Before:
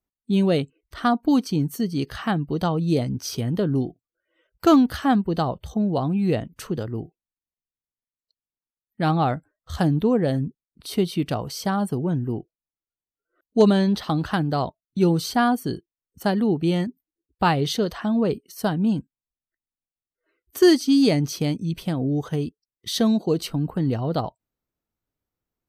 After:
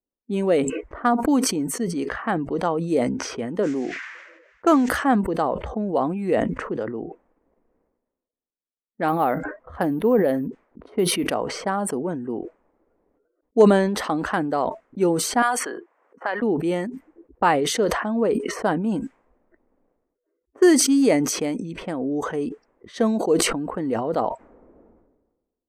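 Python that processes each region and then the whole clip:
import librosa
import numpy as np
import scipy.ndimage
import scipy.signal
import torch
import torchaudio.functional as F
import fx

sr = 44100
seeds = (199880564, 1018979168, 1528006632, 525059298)

y = fx.low_shelf(x, sr, hz=160.0, db=-10.5, at=(3.62, 4.87), fade=0.02)
y = fx.dmg_noise_band(y, sr, seeds[0], low_hz=1600.0, high_hz=6500.0, level_db=-49.0, at=(3.62, 4.87), fade=0.02)
y = fx.chain(y, sr, fx.high_shelf(hz=9700.0, db=-4.0),
    fx.resample_bad(factor=3, down='filtered', up='hold'), at=(9.08, 11.33))
y = fx.chain(y, sr, fx.highpass(hz=1100.0, slope=12),
    fx.band_squash(depth_pct=100), at=(15.42, 16.42))
y = fx.env_lowpass(y, sr, base_hz=490.0, full_db=-19.5)
y = fx.graphic_eq(y, sr, hz=(125, 250, 500, 1000, 2000, 4000, 8000), db=(-11, 7, 10, 7, 10, -8, 12))
y = fx.sustainer(y, sr, db_per_s=47.0)
y = F.gain(torch.from_numpy(y), -8.5).numpy()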